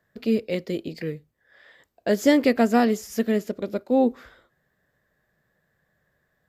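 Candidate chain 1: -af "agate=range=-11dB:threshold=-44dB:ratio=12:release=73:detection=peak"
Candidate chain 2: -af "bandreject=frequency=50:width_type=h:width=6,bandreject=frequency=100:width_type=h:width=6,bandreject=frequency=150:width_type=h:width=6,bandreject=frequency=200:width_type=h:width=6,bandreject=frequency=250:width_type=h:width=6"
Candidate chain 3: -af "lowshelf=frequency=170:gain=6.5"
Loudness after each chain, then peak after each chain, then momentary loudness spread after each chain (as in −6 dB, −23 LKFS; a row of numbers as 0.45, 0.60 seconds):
−23.5, −24.0, −22.0 LKFS; −6.5, −6.0, −5.5 dBFS; 14, 14, 13 LU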